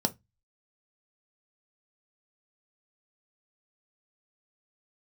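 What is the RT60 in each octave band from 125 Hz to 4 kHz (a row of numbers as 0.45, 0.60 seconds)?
0.40, 0.25, 0.15, 0.15, 0.20, 0.15 seconds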